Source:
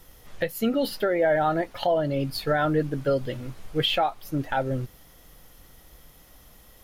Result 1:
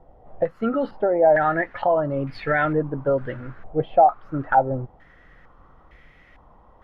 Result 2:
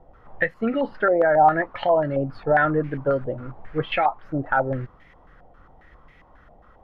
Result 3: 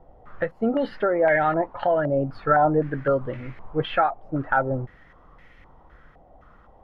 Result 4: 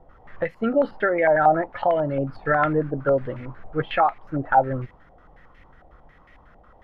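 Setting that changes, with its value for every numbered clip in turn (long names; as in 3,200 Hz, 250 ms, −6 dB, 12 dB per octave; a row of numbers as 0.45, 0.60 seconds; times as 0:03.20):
low-pass on a step sequencer, speed: 2.2, 7.4, 3.9, 11 Hertz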